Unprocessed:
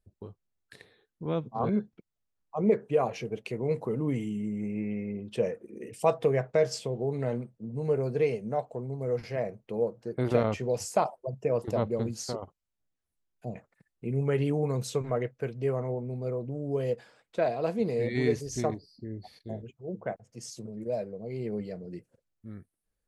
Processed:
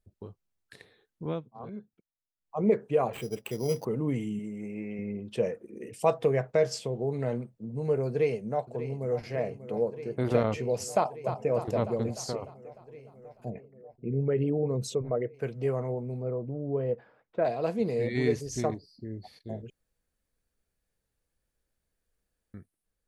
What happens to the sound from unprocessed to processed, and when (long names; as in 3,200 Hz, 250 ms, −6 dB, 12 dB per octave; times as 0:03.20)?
0:01.27–0:02.57: duck −13.5 dB, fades 0.18 s
0:03.13–0:03.85: sample-rate reduction 5,400 Hz
0:04.39–0:04.99: bass and treble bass −8 dB, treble +2 dB
0:08.08–0:09.23: delay throw 590 ms, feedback 85%, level −13 dB
0:10.94–0:11.50: delay throw 300 ms, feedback 60%, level −8.5 dB
0:13.50–0:15.34: spectral envelope exaggerated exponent 1.5
0:16.22–0:17.45: low-pass filter 1,500 Hz
0:19.70–0:22.54: fill with room tone